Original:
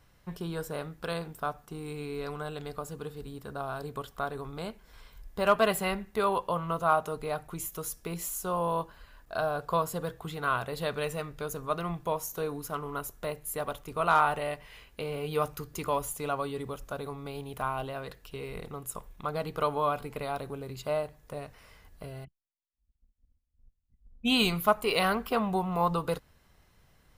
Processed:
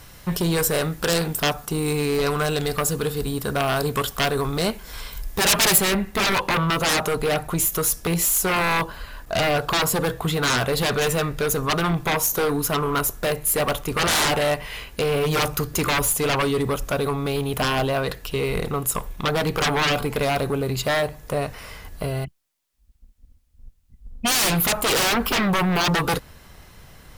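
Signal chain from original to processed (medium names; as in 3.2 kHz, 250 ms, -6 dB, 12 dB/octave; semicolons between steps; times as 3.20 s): sine folder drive 18 dB, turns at -12 dBFS; treble shelf 3.7 kHz +9 dB, from 5.78 s +2 dB; trim -5.5 dB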